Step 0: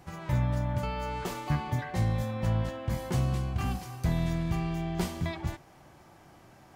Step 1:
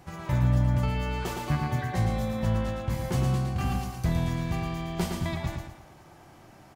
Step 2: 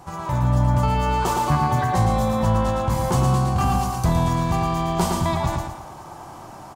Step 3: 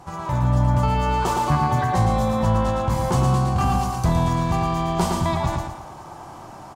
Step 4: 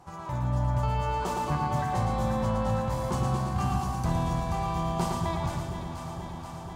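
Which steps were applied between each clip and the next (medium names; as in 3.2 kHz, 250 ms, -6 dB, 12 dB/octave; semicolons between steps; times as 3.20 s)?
feedback delay 113 ms, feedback 37%, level -5 dB; trim +1.5 dB
graphic EQ 1/2/8 kHz +11/-6/+5 dB; in parallel at +1.5 dB: peak limiter -24.5 dBFS, peak gain reduction 11.5 dB; on the sum: level rider gain up to 5 dB; trim -2.5 dB
treble shelf 11 kHz -7.5 dB
echo whose repeats swap between lows and highs 240 ms, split 860 Hz, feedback 85%, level -7 dB; trim -9 dB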